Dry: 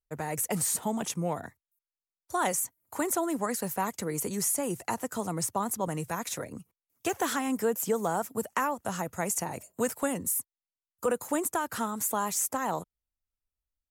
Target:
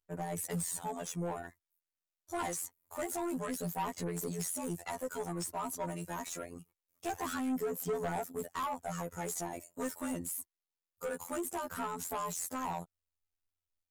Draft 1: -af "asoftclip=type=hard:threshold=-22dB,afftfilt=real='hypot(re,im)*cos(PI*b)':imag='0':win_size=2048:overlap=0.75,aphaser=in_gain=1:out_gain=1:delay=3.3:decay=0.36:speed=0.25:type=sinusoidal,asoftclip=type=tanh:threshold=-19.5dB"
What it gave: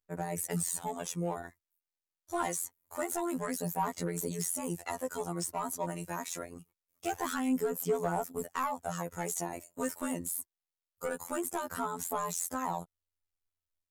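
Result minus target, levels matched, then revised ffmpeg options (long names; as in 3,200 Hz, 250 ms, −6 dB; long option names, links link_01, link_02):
soft clipping: distortion −7 dB
-af "asoftclip=type=hard:threshold=-22dB,afftfilt=real='hypot(re,im)*cos(PI*b)':imag='0':win_size=2048:overlap=0.75,aphaser=in_gain=1:out_gain=1:delay=3.3:decay=0.36:speed=0.25:type=sinusoidal,asoftclip=type=tanh:threshold=-29.5dB"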